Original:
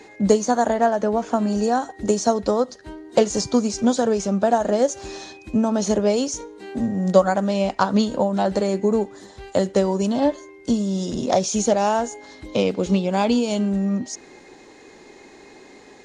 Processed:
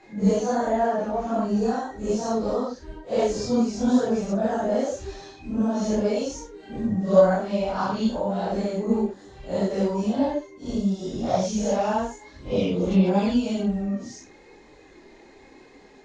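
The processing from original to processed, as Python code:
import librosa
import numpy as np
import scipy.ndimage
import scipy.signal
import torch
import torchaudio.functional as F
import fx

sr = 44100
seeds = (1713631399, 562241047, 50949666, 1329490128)

y = fx.phase_scramble(x, sr, seeds[0], window_ms=200)
y = fx.air_absorb(y, sr, metres=72.0)
y = fx.chorus_voices(y, sr, voices=4, hz=0.87, base_ms=26, depth_ms=4.3, mix_pct=55)
y = fx.low_shelf(y, sr, hz=120.0, db=7.5)
y = F.gain(torch.from_numpy(y), -1.5).numpy()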